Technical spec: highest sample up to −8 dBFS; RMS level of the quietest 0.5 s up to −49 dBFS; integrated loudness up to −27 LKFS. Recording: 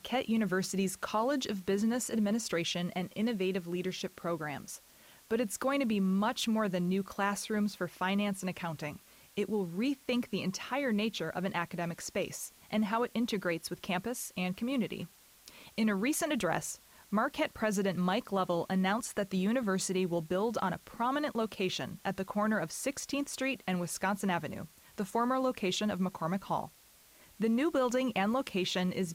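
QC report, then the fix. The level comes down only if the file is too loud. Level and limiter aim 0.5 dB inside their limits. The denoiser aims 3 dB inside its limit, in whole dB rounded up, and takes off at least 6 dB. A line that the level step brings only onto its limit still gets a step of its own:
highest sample −16.5 dBFS: in spec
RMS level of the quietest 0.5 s −61 dBFS: in spec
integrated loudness −33.5 LKFS: in spec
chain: no processing needed

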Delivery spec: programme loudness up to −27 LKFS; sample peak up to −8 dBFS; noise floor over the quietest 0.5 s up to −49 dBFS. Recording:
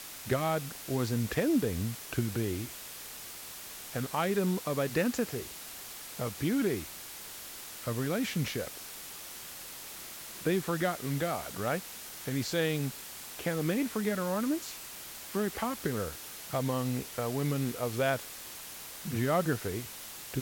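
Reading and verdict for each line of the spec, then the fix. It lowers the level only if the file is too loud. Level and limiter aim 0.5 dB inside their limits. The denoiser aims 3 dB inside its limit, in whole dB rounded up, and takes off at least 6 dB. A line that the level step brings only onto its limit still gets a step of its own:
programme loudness −33.5 LKFS: in spec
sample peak −15.5 dBFS: in spec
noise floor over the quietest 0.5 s −45 dBFS: out of spec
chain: broadband denoise 7 dB, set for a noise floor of −45 dBFS

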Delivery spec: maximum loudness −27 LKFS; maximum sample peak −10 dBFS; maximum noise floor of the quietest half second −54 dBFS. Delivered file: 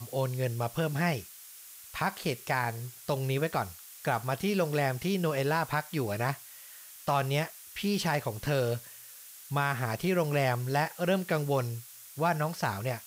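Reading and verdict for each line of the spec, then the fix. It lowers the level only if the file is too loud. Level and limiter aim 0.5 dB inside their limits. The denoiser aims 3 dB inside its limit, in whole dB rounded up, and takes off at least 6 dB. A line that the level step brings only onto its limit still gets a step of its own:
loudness −31.0 LKFS: in spec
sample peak −16.0 dBFS: in spec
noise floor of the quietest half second −49 dBFS: out of spec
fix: broadband denoise 8 dB, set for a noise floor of −49 dBFS

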